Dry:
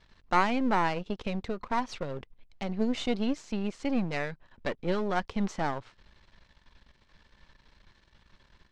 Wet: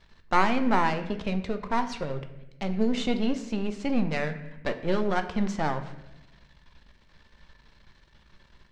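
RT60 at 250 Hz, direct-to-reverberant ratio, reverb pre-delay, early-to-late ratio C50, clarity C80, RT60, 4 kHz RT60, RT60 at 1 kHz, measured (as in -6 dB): 1.3 s, 7.5 dB, 5 ms, 11.5 dB, 13.5 dB, 0.95 s, 0.70 s, 0.85 s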